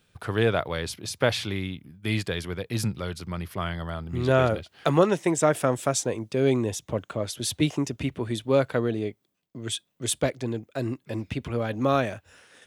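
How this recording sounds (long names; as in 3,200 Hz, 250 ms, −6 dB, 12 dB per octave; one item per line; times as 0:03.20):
background noise floor −72 dBFS
spectral slope −5.0 dB per octave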